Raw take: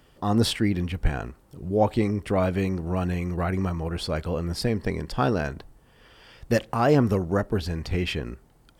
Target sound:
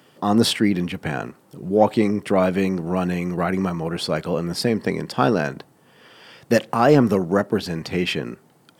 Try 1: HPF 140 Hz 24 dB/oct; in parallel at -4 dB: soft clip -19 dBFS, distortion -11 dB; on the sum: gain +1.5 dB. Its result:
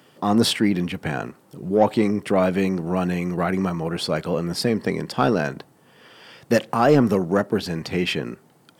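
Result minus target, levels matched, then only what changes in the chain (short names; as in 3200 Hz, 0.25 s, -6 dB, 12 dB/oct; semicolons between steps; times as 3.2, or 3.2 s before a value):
soft clip: distortion +13 dB
change: soft clip -8.5 dBFS, distortion -24 dB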